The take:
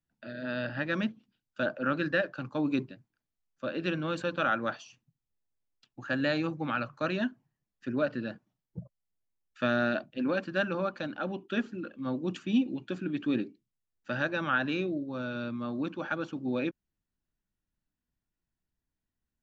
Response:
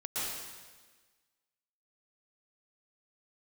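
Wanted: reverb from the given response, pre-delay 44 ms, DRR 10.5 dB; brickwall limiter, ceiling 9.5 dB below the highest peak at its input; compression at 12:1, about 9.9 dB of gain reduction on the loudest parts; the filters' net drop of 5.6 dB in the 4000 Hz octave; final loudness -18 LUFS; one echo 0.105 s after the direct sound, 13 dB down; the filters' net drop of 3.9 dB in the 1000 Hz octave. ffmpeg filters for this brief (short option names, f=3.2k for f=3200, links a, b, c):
-filter_complex "[0:a]equalizer=f=1k:t=o:g=-5.5,equalizer=f=4k:t=o:g=-7,acompressor=threshold=-31dB:ratio=12,alimiter=level_in=7dB:limit=-24dB:level=0:latency=1,volume=-7dB,aecho=1:1:105:0.224,asplit=2[a][b];[1:a]atrim=start_sample=2205,adelay=44[c];[b][c]afir=irnorm=-1:irlink=0,volume=-15.5dB[d];[a][d]amix=inputs=2:normalize=0,volume=22.5dB"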